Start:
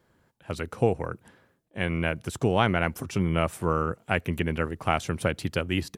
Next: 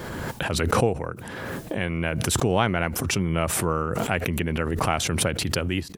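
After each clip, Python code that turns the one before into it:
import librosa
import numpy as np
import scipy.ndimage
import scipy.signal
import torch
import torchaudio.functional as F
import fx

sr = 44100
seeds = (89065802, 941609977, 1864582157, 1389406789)

y = fx.pre_swell(x, sr, db_per_s=21.0)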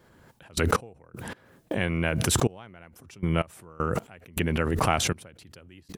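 y = fx.step_gate(x, sr, bpm=79, pattern='...x..x..xxxx.', floor_db=-24.0, edge_ms=4.5)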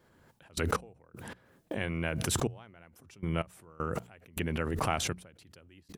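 y = fx.hum_notches(x, sr, base_hz=60, count=3)
y = y * librosa.db_to_amplitude(-6.5)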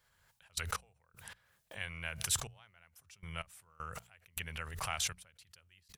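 y = fx.tone_stack(x, sr, knobs='10-0-10')
y = y * librosa.db_to_amplitude(1.0)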